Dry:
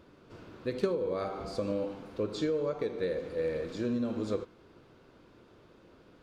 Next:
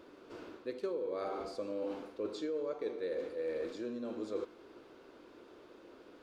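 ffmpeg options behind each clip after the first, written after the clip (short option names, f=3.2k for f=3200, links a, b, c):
-af "areverse,acompressor=threshold=-38dB:ratio=6,areverse,lowshelf=f=220:t=q:w=1.5:g=-11,volume=1.5dB"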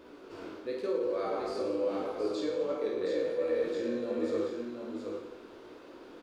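-filter_complex "[0:a]asplit=2[a][b];[b]aecho=0:1:50|107.5|173.6|249.7|337.1:0.631|0.398|0.251|0.158|0.1[c];[a][c]amix=inputs=2:normalize=0,flanger=delay=16:depth=6.6:speed=0.86,asplit=2[d][e];[e]aecho=0:1:722:0.531[f];[d][f]amix=inputs=2:normalize=0,volume=6dB"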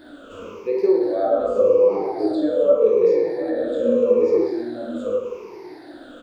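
-filter_complex "[0:a]afftfilt=real='re*pow(10,18/40*sin(2*PI*(0.8*log(max(b,1)*sr/1024/100)/log(2)-(-0.84)*(pts-256)/sr)))':imag='im*pow(10,18/40*sin(2*PI*(0.8*log(max(b,1)*sr/1024/100)/log(2)-(-0.84)*(pts-256)/sr)))':win_size=1024:overlap=0.75,adynamicequalizer=threshold=0.0112:dfrequency=560:dqfactor=1.2:tfrequency=560:tqfactor=1.2:attack=5:release=100:ratio=0.375:range=3.5:mode=boostabove:tftype=bell,acrossover=split=1100[a][b];[b]acompressor=threshold=-50dB:ratio=6[c];[a][c]amix=inputs=2:normalize=0,volume=5.5dB"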